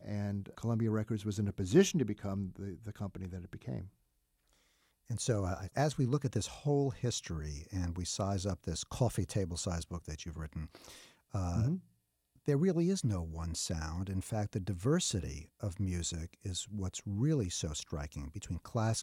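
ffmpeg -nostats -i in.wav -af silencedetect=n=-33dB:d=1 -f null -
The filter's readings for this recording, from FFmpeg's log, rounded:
silence_start: 3.79
silence_end: 5.11 | silence_duration: 1.32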